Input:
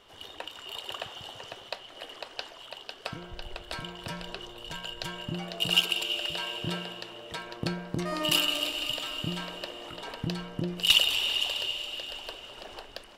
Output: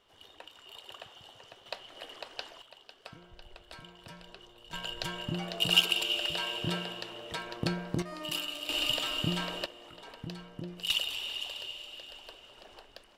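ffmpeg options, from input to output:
-af "asetnsamples=n=441:p=0,asendcmd='1.66 volume volume -3dB;2.62 volume volume -11.5dB;4.73 volume volume 0dB;8.02 volume volume -10dB;8.69 volume volume 2dB;9.66 volume volume -9dB',volume=0.316"

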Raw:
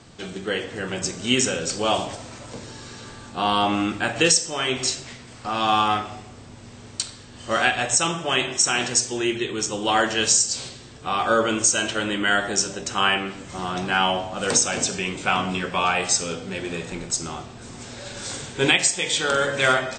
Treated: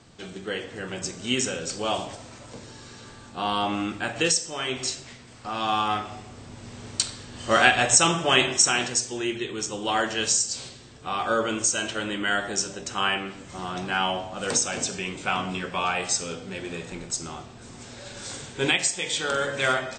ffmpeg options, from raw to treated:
-af "volume=1.33,afade=t=in:st=5.83:d=1.07:silence=0.421697,afade=t=out:st=8.44:d=0.5:silence=0.446684"

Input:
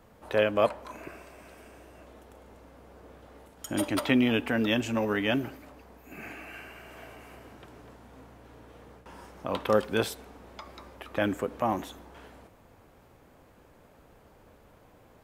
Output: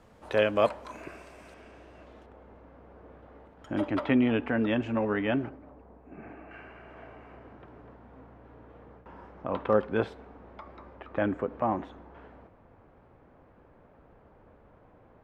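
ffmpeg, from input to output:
-af "asetnsamples=n=441:p=0,asendcmd='1.54 lowpass f 4400;2.26 lowpass f 1900;5.49 lowpass f 1000;6.51 lowpass f 1700',lowpass=8800"

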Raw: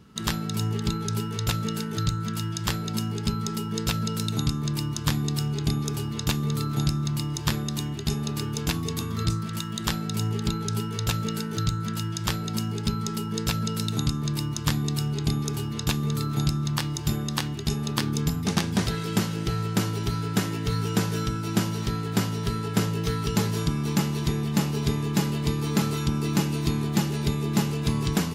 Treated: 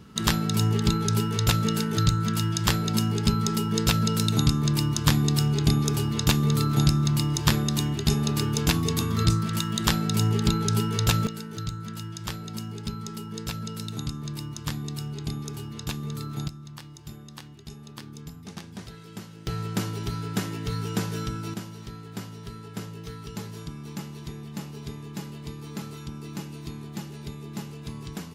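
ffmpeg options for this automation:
-af "asetnsamples=n=441:p=0,asendcmd='11.27 volume volume -6.5dB;16.48 volume volume -15.5dB;19.47 volume volume -3.5dB;21.54 volume volume -12dB',volume=1.58"

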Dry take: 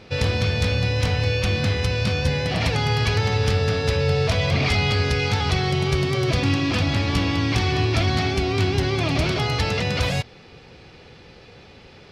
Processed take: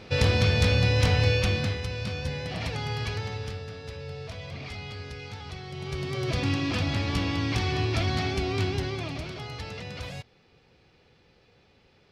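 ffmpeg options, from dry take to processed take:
-af "volume=3.76,afade=t=out:st=1.27:d=0.54:silence=0.334965,afade=t=out:st=3.05:d=0.62:silence=0.398107,afade=t=in:st=5.69:d=0.74:silence=0.251189,afade=t=out:st=8.6:d=0.64:silence=0.354813"

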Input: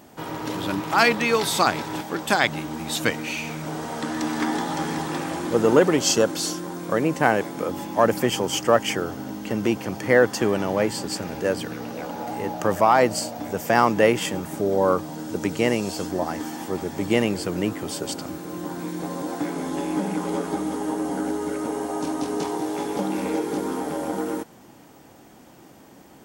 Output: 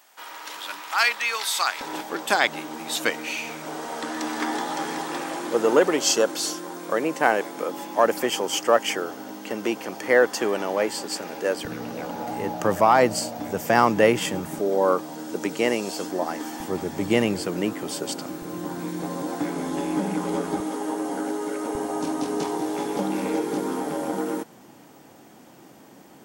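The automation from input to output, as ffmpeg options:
-af "asetnsamples=n=441:p=0,asendcmd='1.81 highpass f 340;11.65 highpass f 83;14.59 highpass f 260;16.6 highpass f 83;17.44 highpass f 170;18.42 highpass f 76;20.6 highpass f 280;21.75 highpass f 120',highpass=1200"

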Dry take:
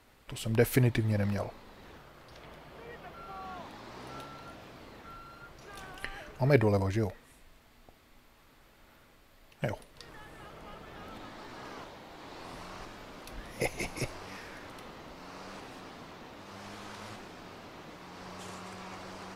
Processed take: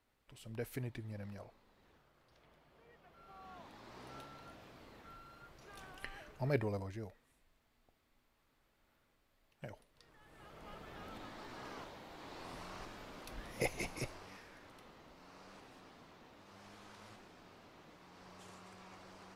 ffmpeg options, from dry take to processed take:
-af "volume=1.58,afade=t=in:st=3.04:d=0.93:silence=0.334965,afade=t=out:st=6.16:d=0.81:silence=0.398107,afade=t=in:st=10.19:d=0.57:silence=0.266073,afade=t=out:st=13.66:d=0.8:silence=0.421697"

